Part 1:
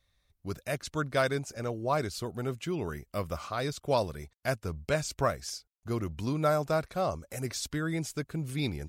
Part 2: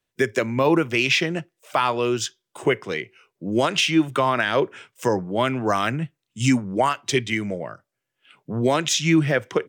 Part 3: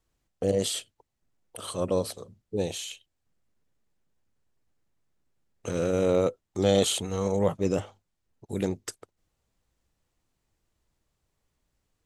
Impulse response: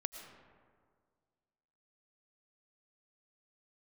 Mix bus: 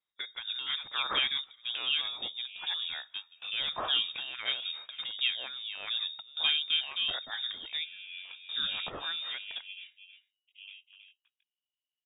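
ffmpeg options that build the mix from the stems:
-filter_complex "[0:a]flanger=delay=2.6:depth=2.8:regen=88:speed=0.58:shape=triangular,volume=2dB[a];[1:a]acrossover=split=130|3000[b][c][d];[c]acompressor=threshold=-27dB:ratio=6[e];[b][e][d]amix=inputs=3:normalize=0,highshelf=f=5.5k:g=9.5,volume=-12.5dB,asplit=3[f][g][h];[g]volume=-18.5dB[i];[2:a]lowpass=1k,flanger=delay=16:depth=4.8:speed=1.7,aeval=exprs='val(0)*sin(2*PI*880*n/s)':c=same,adelay=2050,volume=-15.5dB,asplit=2[j][k];[k]volume=-7.5dB[l];[h]apad=whole_len=391970[m];[a][m]sidechaingate=range=-21dB:threshold=-59dB:ratio=16:detection=peak[n];[3:a]atrim=start_sample=2205[o];[i][o]afir=irnorm=-1:irlink=0[p];[l]aecho=0:1:320:1[q];[n][f][j][p][q]amix=inputs=5:normalize=0,lowpass=f=3.2k:t=q:w=0.5098,lowpass=f=3.2k:t=q:w=0.6013,lowpass=f=3.2k:t=q:w=0.9,lowpass=f=3.2k:t=q:w=2.563,afreqshift=-3800"

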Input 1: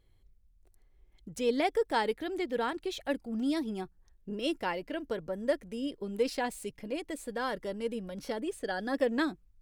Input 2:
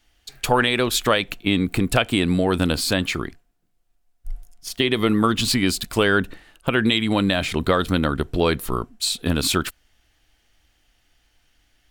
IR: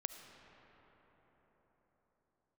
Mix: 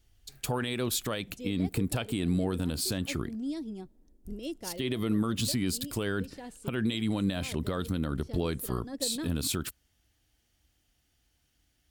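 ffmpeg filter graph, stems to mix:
-filter_complex "[0:a]lowpass=8.1k,volume=0dB,asplit=2[a][b];[b]volume=-23dB[c];[1:a]highpass=58,equalizer=f=1.3k:t=o:w=1.4:g=4.5,volume=-2dB,asplit=2[d][e];[e]apad=whole_len=423848[f];[a][f]sidechaincompress=threshold=-22dB:ratio=8:attack=31:release=594[g];[2:a]atrim=start_sample=2205[h];[c][h]afir=irnorm=-1:irlink=0[i];[g][d][i]amix=inputs=3:normalize=0,equalizer=f=1.4k:w=0.36:g=-14.5,alimiter=limit=-19.5dB:level=0:latency=1:release=111"

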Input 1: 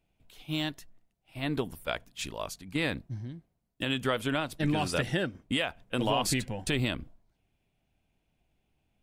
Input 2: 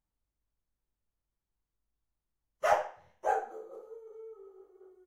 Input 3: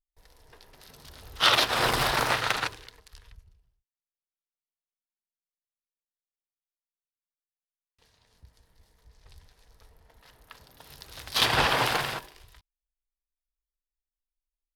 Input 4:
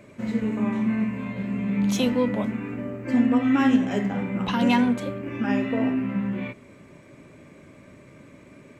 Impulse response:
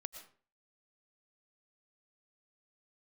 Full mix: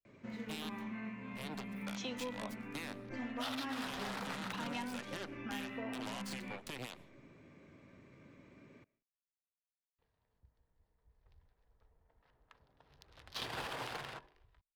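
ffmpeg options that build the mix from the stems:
-filter_complex "[0:a]alimiter=level_in=0.5dB:limit=-24dB:level=0:latency=1:release=250,volume=-0.5dB,aeval=exprs='0.0596*(cos(1*acos(clip(val(0)/0.0596,-1,1)))-cos(1*PI/2))+0.0237*(cos(4*acos(clip(val(0)/0.0596,-1,1)))-cos(4*PI/2))+0.0237*(cos(6*acos(clip(val(0)/0.0596,-1,1)))-cos(6*PI/2))+0.00944*(cos(7*acos(clip(val(0)/0.0596,-1,1)))-cos(7*PI/2))':c=same,volume=-9dB,asplit=3[a][b][c];[b]volume=-9.5dB[d];[1:a]adelay=750,volume=-3.5dB[e];[2:a]adynamicsmooth=sensitivity=7:basefreq=1.8k,adelay=2000,volume=-13dB[f];[3:a]lowpass=f=6.1k:w=0.5412,lowpass=f=6.1k:w=1.3066,bandreject=f=600:w=15,adelay=50,volume=-12.5dB,asplit=2[g][h];[h]volume=-10.5dB[i];[c]apad=whole_len=256228[j];[e][j]sidechaincompress=threshold=-56dB:ratio=8:attack=16:release=602[k];[4:a]atrim=start_sample=2205[l];[d][i]amix=inputs=2:normalize=0[m];[m][l]afir=irnorm=-1:irlink=0[n];[a][k][f][g][n]amix=inputs=5:normalize=0,acrossover=split=180|590|6400[o][p][q][r];[o]acompressor=threshold=-54dB:ratio=4[s];[p]acompressor=threshold=-47dB:ratio=4[t];[q]acompressor=threshold=-41dB:ratio=4[u];[r]acompressor=threshold=-56dB:ratio=4[v];[s][t][u][v]amix=inputs=4:normalize=0"

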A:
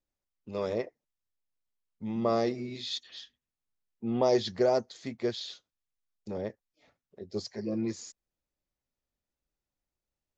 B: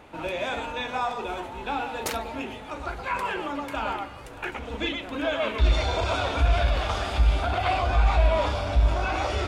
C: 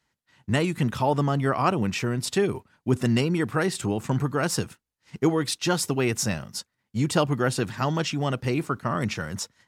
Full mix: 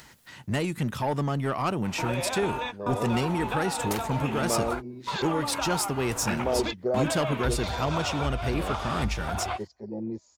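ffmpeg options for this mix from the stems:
-filter_complex "[0:a]afwtdn=0.01,adelay=2250,volume=-2dB[a];[1:a]equalizer=f=1k:w=1.5:g=6,acompressor=threshold=-31dB:ratio=12,adelay=1850,volume=3dB[b];[2:a]asoftclip=type=tanh:threshold=-17dB,acompressor=mode=upward:threshold=-30dB:ratio=2.5,volume=-2.5dB,asplit=2[c][d];[d]apad=whole_len=499532[e];[b][e]sidechaingate=range=-45dB:threshold=-49dB:ratio=16:detection=peak[f];[a][f][c]amix=inputs=3:normalize=0,highshelf=f=11k:g=7.5"

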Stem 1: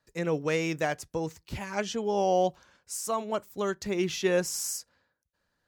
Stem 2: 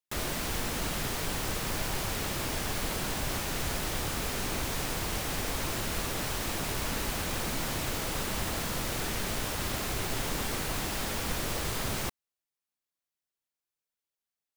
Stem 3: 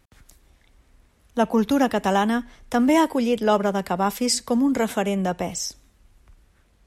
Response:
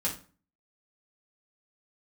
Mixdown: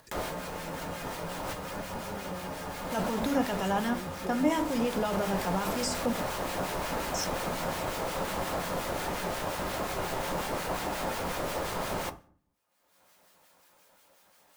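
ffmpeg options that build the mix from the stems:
-filter_complex "[0:a]asubboost=boost=8:cutoff=250,volume=-19.5dB,asplit=2[a][b];[1:a]equalizer=f=720:t=o:w=2.5:g=12.5,volume=-6dB,asplit=2[c][d];[d]volume=-11dB[e];[2:a]bandreject=f=50:t=h:w=6,bandreject=f=100:t=h:w=6,bandreject=f=150:t=h:w=6,bandreject=f=200:t=h:w=6,bandreject=f=250:t=h:w=6,adelay=1550,volume=-5dB,asplit=3[f][g][h];[f]atrim=end=6.13,asetpts=PTS-STARTPTS,afade=t=out:st=6.126:d=0.004:c=hsin[i];[g]atrim=start=6.13:end=7.14,asetpts=PTS-STARTPTS,volume=0[j];[h]atrim=start=7.14,asetpts=PTS-STARTPTS,afade=t=in:d=0.004:c=hsin[k];[i][j][k]concat=n=3:v=0:a=1,asplit=2[l][m];[m]volume=-13.5dB[n];[b]apad=whole_len=642325[o];[c][o]sidechaincompress=threshold=-44dB:ratio=8:attack=11:release=1110[p];[p][l]amix=inputs=2:normalize=0,agate=range=-8dB:threshold=-34dB:ratio=16:detection=peak,alimiter=limit=-21dB:level=0:latency=1:release=32,volume=0dB[q];[3:a]atrim=start_sample=2205[r];[e][n]amix=inputs=2:normalize=0[s];[s][r]afir=irnorm=-1:irlink=0[t];[a][q][t]amix=inputs=3:normalize=0,acrossover=split=1400[u][v];[u]aeval=exprs='val(0)*(1-0.5/2+0.5/2*cos(2*PI*5.6*n/s))':c=same[w];[v]aeval=exprs='val(0)*(1-0.5/2-0.5/2*cos(2*PI*5.6*n/s))':c=same[x];[w][x]amix=inputs=2:normalize=0,acompressor=mode=upward:threshold=-34dB:ratio=2.5"

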